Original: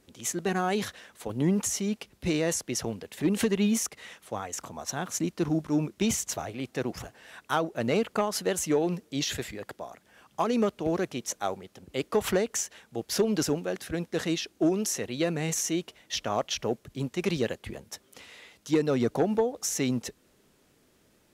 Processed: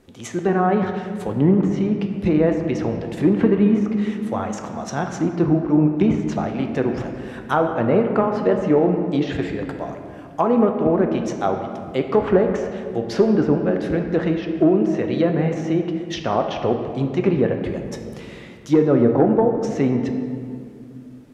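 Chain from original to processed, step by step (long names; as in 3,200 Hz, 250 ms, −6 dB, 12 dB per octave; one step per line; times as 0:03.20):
treble cut that deepens with the level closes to 1,600 Hz, closed at −24.5 dBFS
high-shelf EQ 2,600 Hz −10 dB
on a send: convolution reverb RT60 2.4 s, pre-delay 6 ms, DRR 4 dB
on the sum: level +9 dB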